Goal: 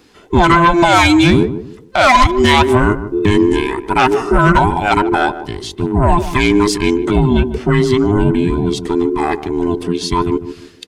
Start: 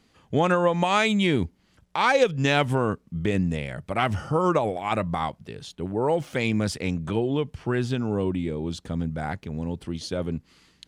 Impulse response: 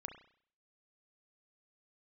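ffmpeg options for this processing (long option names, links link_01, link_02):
-filter_complex "[0:a]afftfilt=real='real(if(between(b,1,1008),(2*floor((b-1)/24)+1)*24-b,b),0)':imag='imag(if(between(b,1,1008),(2*floor((b-1)/24)+1)*24-b,b),0)*if(between(b,1,1008),-1,1)':win_size=2048:overlap=0.75,aeval=exprs='0.398*sin(PI/2*1.78*val(0)/0.398)':channel_layout=same,asplit=2[link_01][link_02];[link_02]adelay=150,lowpass=frequency=800:poles=1,volume=-10dB,asplit=2[link_03][link_04];[link_04]adelay=150,lowpass=frequency=800:poles=1,volume=0.32,asplit=2[link_05][link_06];[link_06]adelay=150,lowpass=frequency=800:poles=1,volume=0.32,asplit=2[link_07][link_08];[link_08]adelay=150,lowpass=frequency=800:poles=1,volume=0.32[link_09];[link_01][link_03][link_05][link_07][link_09]amix=inputs=5:normalize=0,volume=4.5dB"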